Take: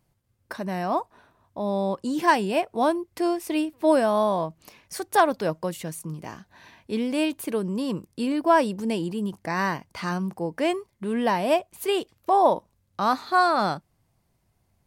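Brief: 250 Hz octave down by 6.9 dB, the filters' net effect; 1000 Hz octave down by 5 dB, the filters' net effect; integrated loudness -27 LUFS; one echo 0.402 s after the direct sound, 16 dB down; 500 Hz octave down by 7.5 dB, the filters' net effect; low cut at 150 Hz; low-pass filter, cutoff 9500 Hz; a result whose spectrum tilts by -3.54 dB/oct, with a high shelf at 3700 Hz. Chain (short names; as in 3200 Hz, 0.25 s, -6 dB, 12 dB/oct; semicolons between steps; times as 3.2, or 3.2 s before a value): HPF 150 Hz; LPF 9500 Hz; bell 250 Hz -5.5 dB; bell 500 Hz -8 dB; bell 1000 Hz -3.5 dB; high shelf 3700 Hz +5 dB; echo 0.402 s -16 dB; gain +3 dB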